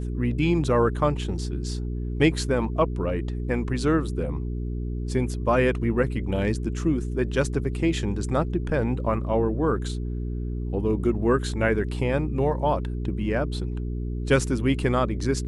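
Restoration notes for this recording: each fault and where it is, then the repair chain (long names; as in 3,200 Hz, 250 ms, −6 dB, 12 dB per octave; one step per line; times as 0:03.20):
mains hum 60 Hz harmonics 7 −29 dBFS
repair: hum removal 60 Hz, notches 7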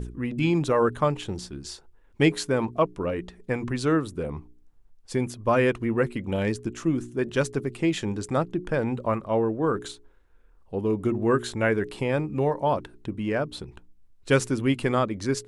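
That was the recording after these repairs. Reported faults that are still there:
none of them is left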